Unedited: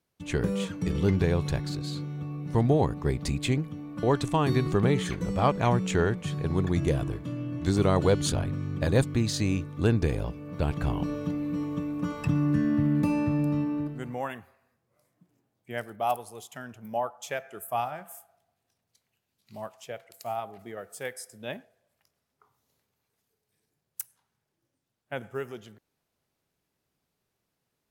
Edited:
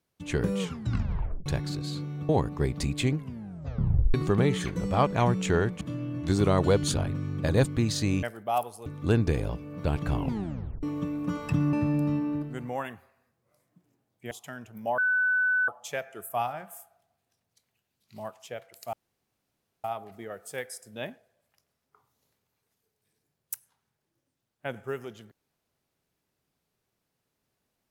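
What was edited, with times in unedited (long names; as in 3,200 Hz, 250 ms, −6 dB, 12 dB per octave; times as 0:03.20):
0:00.59: tape stop 0.87 s
0:02.29–0:02.74: remove
0:03.60: tape stop 0.99 s
0:06.26–0:07.19: remove
0:10.95: tape stop 0.63 s
0:12.48–0:13.18: remove
0:15.76–0:16.39: move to 0:09.61
0:17.06: insert tone 1,500 Hz −21.5 dBFS 0.70 s
0:20.31: splice in room tone 0.91 s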